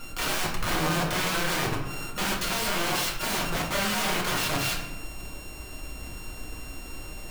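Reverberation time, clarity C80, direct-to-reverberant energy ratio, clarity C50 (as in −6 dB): 0.90 s, 8.0 dB, −2.5 dB, 5.0 dB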